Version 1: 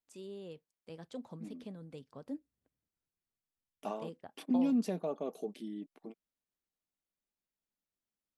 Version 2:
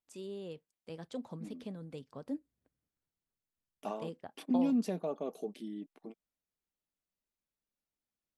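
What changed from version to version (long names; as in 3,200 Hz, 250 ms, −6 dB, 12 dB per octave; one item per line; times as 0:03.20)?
first voice +3.0 dB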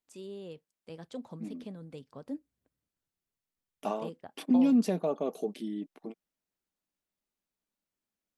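second voice +6.0 dB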